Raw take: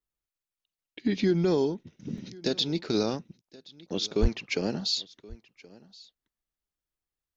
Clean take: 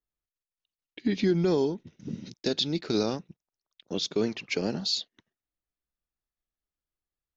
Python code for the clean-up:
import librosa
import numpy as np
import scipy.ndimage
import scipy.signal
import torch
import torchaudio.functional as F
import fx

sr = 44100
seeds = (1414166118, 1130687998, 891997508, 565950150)

y = fx.fix_declip(x, sr, threshold_db=-15.0)
y = fx.highpass(y, sr, hz=140.0, slope=24, at=(4.21, 4.33), fade=0.02)
y = fx.fix_interpolate(y, sr, at_s=(2.18,), length_ms=2.8)
y = fx.fix_echo_inverse(y, sr, delay_ms=1075, level_db=-22.5)